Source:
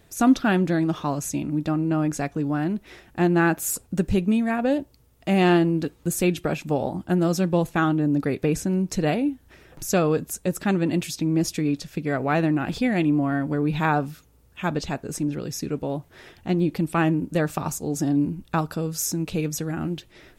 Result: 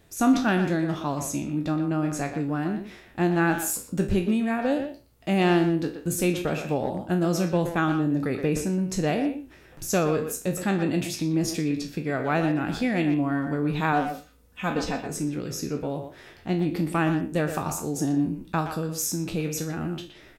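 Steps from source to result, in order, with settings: spectral trails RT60 0.31 s; 13.92–15.02 comb 4 ms, depth 59%; speakerphone echo 0.12 s, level -7 dB; gain -3 dB

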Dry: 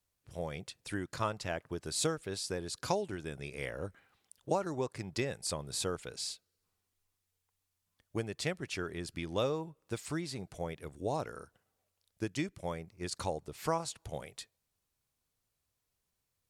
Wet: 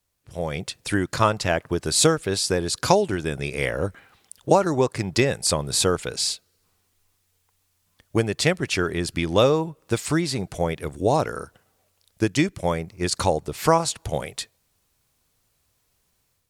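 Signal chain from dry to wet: AGC gain up to 7.5 dB; gain +7 dB

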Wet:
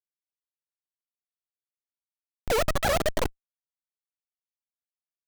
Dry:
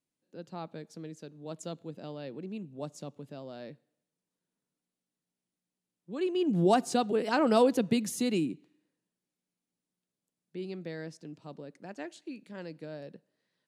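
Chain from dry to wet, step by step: tone controls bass +12 dB, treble +9 dB; wide varispeed 2.59×; Schmitt trigger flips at -19 dBFS; gain +7 dB

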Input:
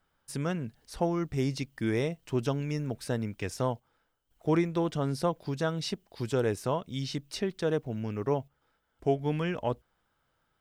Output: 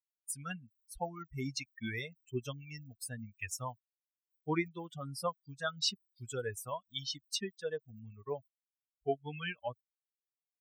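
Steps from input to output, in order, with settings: per-bin expansion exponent 3; tilt shelf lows -7.5 dB, about 1200 Hz; gain +2 dB

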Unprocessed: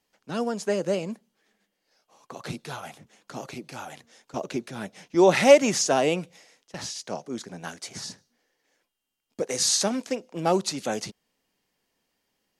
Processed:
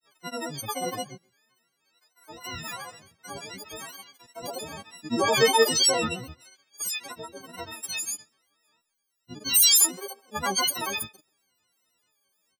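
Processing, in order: frequency quantiser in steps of 6 st; grains 0.1 s, grains 23/s, pitch spread up and down by 12 st; speakerphone echo 0.13 s, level -22 dB; gain -5.5 dB

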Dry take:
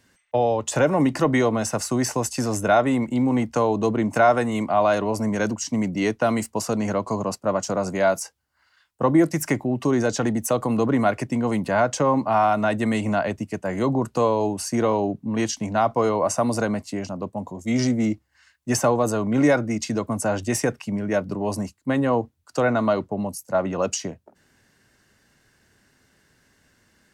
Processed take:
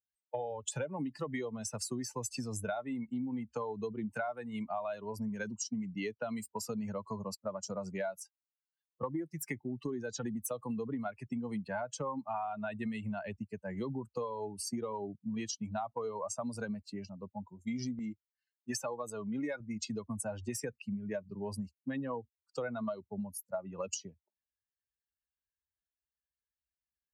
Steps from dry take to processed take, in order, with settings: per-bin expansion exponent 2; HPF 110 Hz 6 dB/oct, from 17.99 s 450 Hz, from 19.6 s 98 Hz; compressor 12:1, threshold -34 dBFS, peak gain reduction 19.5 dB

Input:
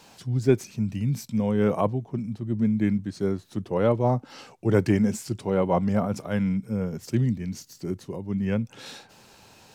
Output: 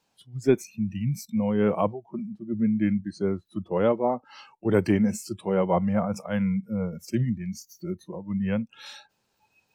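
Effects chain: spectral noise reduction 21 dB

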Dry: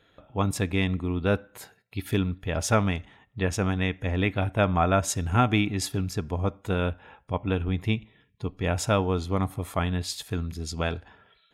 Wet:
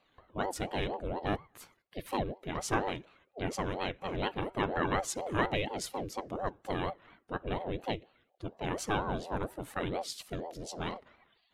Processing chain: flange 0.6 Hz, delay 0.9 ms, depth 3.9 ms, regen +54%; ring modulator with a swept carrier 440 Hz, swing 55%, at 4.2 Hz; gain -1 dB

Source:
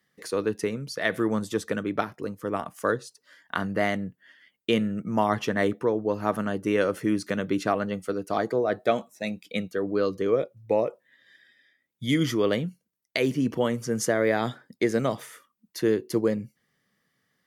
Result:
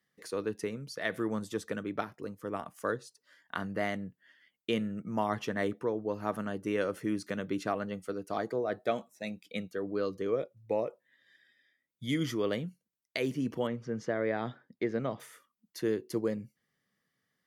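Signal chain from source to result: 13.67–15.2 air absorption 220 m; gain -7.5 dB

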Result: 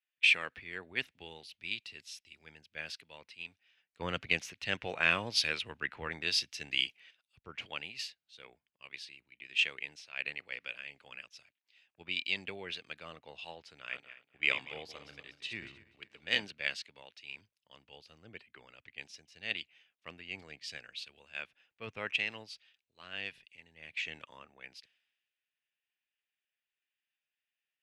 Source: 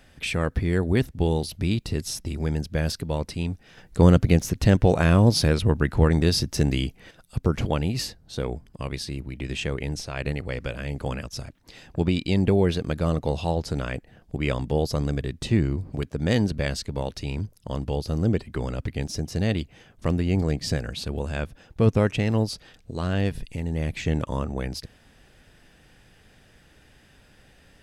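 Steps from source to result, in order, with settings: 13.77–16.45 regenerating reverse delay 0.122 s, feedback 58%, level -7.5 dB; band-pass 2600 Hz, Q 2.6; three-band expander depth 100%

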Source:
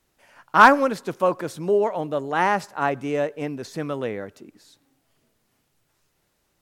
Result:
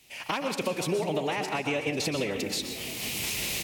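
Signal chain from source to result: recorder AGC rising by 12 dB/s; HPF 50 Hz 12 dB/oct; resonant high shelf 1900 Hz +8 dB, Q 3; compressor 8:1, threshold -32 dBFS, peak gain reduction 23.5 dB; time stretch by phase-locked vocoder 0.55×; frequency-shifting echo 0.495 s, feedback 59%, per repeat -32 Hz, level -15.5 dB; on a send at -6 dB: reverb RT60 0.60 s, pre-delay 0.113 s; on the sum: gain +6 dB

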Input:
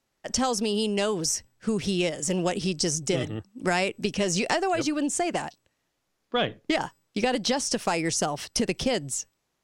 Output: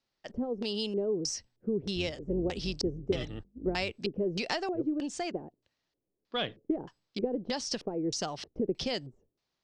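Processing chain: 1.95–3.92 octaver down 2 oct, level -3 dB; LFO low-pass square 1.6 Hz 410–4600 Hz; gain -8.5 dB

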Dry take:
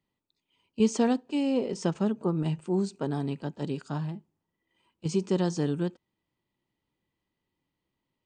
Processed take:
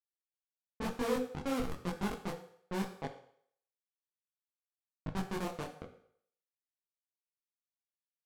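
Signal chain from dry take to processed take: Schmitt trigger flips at -23 dBFS; dynamic EQ 910 Hz, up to +4 dB, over -48 dBFS, Q 0.99; low-pass opened by the level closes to 810 Hz, open at -29.5 dBFS; on a send at -4 dB: reverb RT60 0.65 s, pre-delay 3 ms; on the sum: detuned doubles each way 34 cents

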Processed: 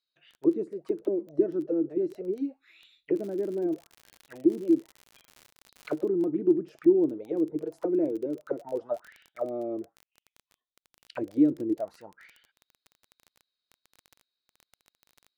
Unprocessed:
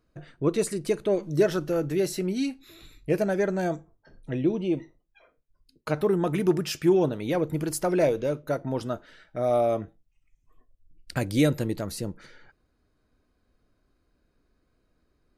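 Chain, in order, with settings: auto-wah 320–4000 Hz, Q 6.8, down, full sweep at -22.5 dBFS; crackle 10/s -43 dBFS, from 3.15 s 110/s, from 6.09 s 18/s; gain +6 dB

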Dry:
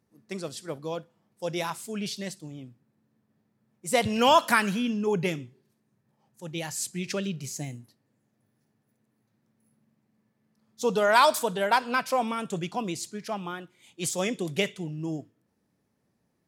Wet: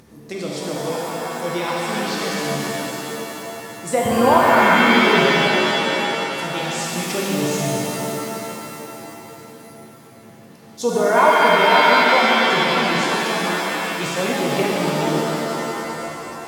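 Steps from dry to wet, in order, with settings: treble ducked by the level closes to 1300 Hz, closed at -21 dBFS; in parallel at 0 dB: upward compressor, threshold -29 dBFS; on the sum: shimmer reverb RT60 3.4 s, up +7 st, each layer -2 dB, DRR -4.5 dB; gain -3 dB

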